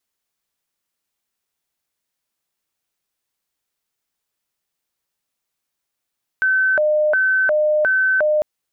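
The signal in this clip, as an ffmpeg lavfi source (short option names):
-f lavfi -i "aevalsrc='0.211*sin(2*PI*(1068.5*t+461.5/1.4*(0.5-abs(mod(1.4*t,1)-0.5))))':d=2:s=44100"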